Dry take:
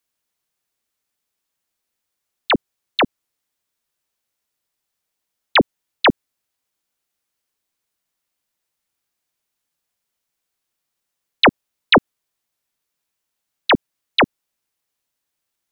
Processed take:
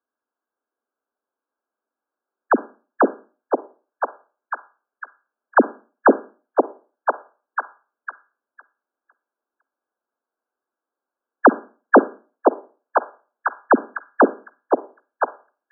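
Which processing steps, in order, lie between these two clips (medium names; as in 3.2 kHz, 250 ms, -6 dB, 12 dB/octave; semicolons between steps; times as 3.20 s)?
brick-wall FIR band-pass 210–1700 Hz; repeats whose band climbs or falls 506 ms, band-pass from 450 Hz, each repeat 0.7 oct, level -1 dB; Schroeder reverb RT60 0.37 s, DRR 17 dB; trim +1.5 dB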